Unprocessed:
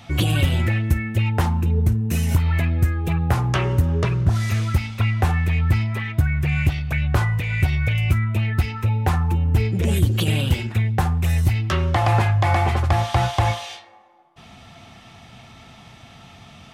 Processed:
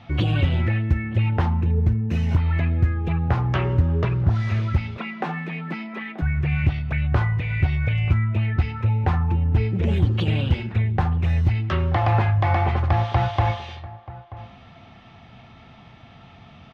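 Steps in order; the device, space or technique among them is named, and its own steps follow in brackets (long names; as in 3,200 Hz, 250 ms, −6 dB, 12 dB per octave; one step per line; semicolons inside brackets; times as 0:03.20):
shout across a valley (high-frequency loss of the air 240 metres; slap from a distant wall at 160 metres, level −17 dB)
0:04.97–0:06.22: Butterworth high-pass 160 Hz 96 dB per octave
level −1 dB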